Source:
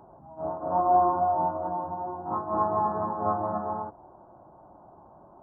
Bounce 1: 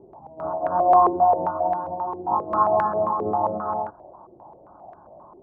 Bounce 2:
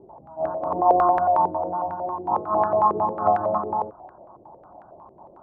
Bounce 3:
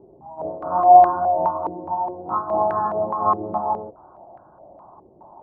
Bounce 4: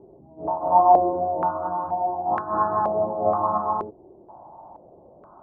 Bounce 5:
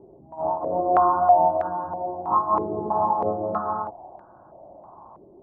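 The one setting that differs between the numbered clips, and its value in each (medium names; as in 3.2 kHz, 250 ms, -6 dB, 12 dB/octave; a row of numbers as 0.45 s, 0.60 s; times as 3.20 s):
step-sequenced low-pass, rate: 7.5 Hz, 11 Hz, 4.8 Hz, 2.1 Hz, 3.1 Hz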